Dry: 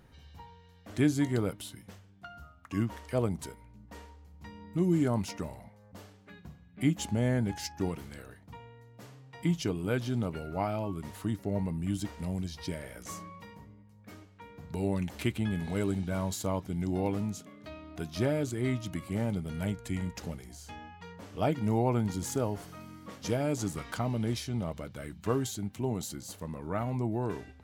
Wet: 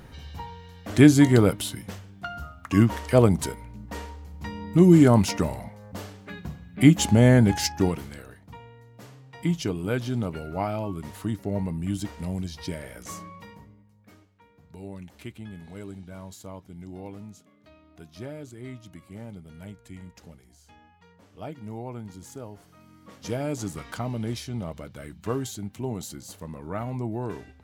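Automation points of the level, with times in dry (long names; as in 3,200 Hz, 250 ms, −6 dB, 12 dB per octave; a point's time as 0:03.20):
0:07.66 +12 dB
0:08.22 +3.5 dB
0:13.49 +3.5 dB
0:14.53 −9 dB
0:22.66 −9 dB
0:23.37 +1 dB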